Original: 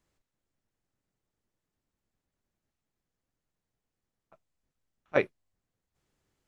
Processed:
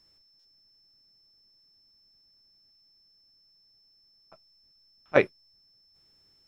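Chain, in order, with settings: whistle 5.3 kHz -66 dBFS; buffer glitch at 0.39 s, samples 256, times 9; trim +5 dB

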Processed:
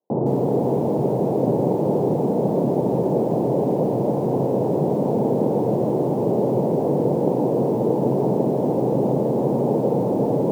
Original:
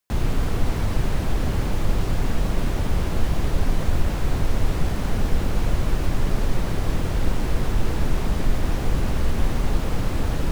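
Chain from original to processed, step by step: Chebyshev band-pass 130–910 Hz, order 4; peaking EQ 450 Hz +11 dB 1.4 oct; bit-crushed delay 162 ms, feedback 35%, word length 8-bit, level -7.5 dB; trim +4 dB

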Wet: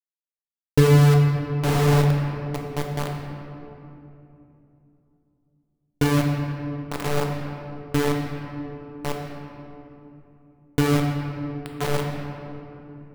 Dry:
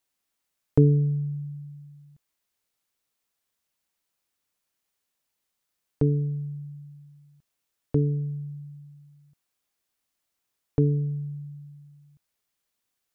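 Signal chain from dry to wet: echo that smears into a reverb 1018 ms, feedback 63%, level -4 dB; bit crusher 4-bit; simulated room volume 130 m³, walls hard, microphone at 0.38 m

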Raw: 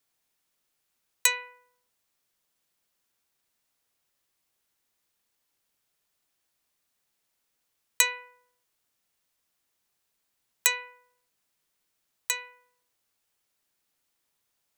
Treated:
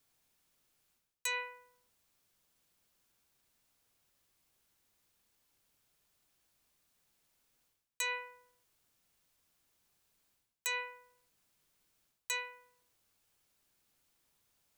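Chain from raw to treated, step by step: bass shelf 210 Hz +8 dB; band-stop 1.9 kHz, Q 28; reverse; compression 16:1, threshold -35 dBFS, peak gain reduction 20.5 dB; reverse; trim +1.5 dB

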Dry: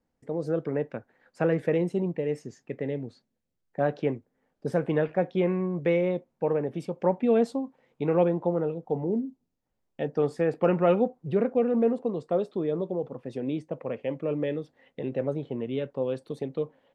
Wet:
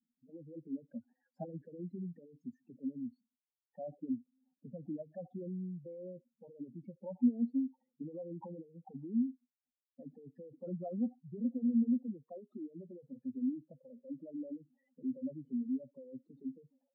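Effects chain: spectral contrast enhancement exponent 3.9; two resonant band-passes 450 Hz, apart 1.7 oct; trim +1.5 dB

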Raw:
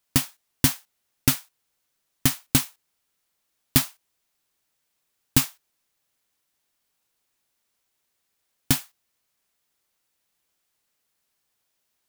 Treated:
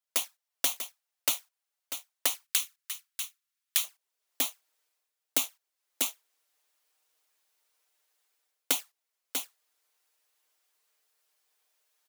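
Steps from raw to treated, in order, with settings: touch-sensitive flanger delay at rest 6.6 ms, full sweep at -19.5 dBFS; waveshaping leveller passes 2; delay 642 ms -13.5 dB; level rider gain up to 14 dB; high-pass 490 Hz 24 dB/octave, from 2.44 s 1.2 kHz, from 3.84 s 390 Hz; compression, threshold -16 dBFS, peak gain reduction 6 dB; trim -6.5 dB

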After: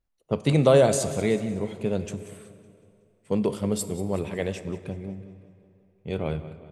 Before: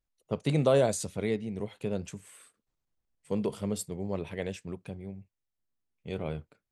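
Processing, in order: feedback delay 186 ms, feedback 49%, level -15 dB; on a send at -13 dB: reverberation RT60 2.8 s, pre-delay 8 ms; on the sum: tape noise reduction on one side only decoder only; trim +6 dB

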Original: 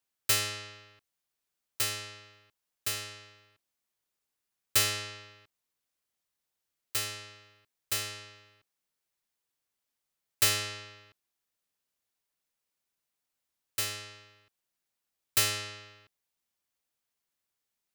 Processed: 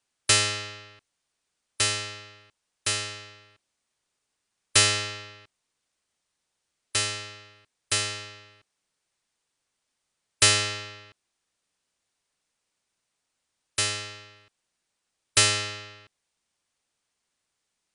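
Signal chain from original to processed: brick-wall FIR low-pass 10 kHz; trim +8 dB

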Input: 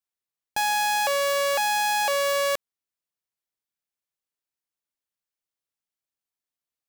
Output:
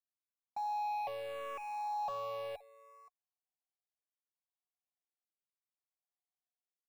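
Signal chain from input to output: cascade formant filter a; in parallel at -10.5 dB: sample-and-hold 28×; on the sum: delay 524 ms -21.5 dB; saturation -37 dBFS, distortion -12 dB; barber-pole phaser -0.75 Hz; trim +3.5 dB

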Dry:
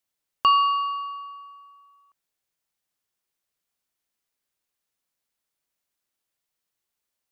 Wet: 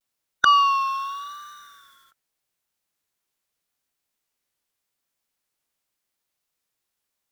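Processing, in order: formant shift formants +4 st; vibrato 0.84 Hz 72 cents; trim +2.5 dB

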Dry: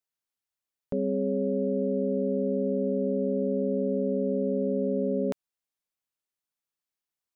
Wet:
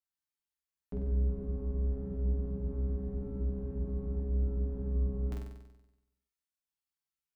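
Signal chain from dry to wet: octave divider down 2 oct, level 0 dB; peaking EQ 540 Hz -13.5 dB 0.46 oct; feedback comb 58 Hz, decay 0.24 s, harmonics odd, mix 90%; on a send: flutter echo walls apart 8.1 m, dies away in 0.97 s

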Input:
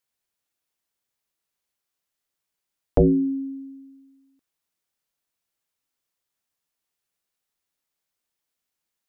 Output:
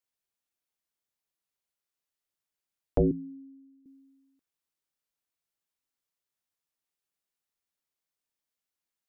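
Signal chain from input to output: 3.11–3.86 s: inverse Chebyshev low-pass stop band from 910 Hz, stop band 70 dB; trim -7 dB

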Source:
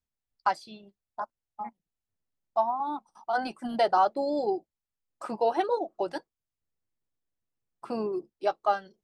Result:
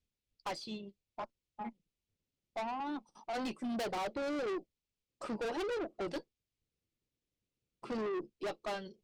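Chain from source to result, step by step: Bessel low-pass 5 kHz, order 2; high-order bell 1.1 kHz -10.5 dB; valve stage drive 40 dB, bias 0.2; trim +5.5 dB

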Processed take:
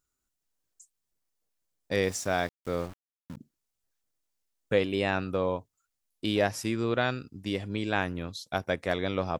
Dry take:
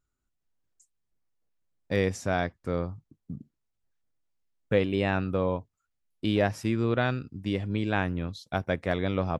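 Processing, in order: tone controls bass -6 dB, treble +8 dB; 2.02–3.37 s: small samples zeroed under -42 dBFS

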